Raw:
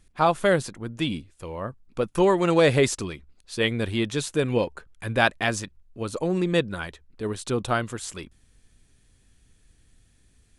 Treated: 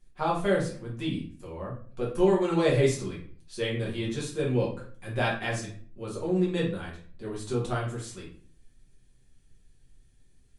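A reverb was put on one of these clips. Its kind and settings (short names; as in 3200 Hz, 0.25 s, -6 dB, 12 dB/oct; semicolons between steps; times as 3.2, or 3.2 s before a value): shoebox room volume 42 m³, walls mixed, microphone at 1.2 m; gain -13 dB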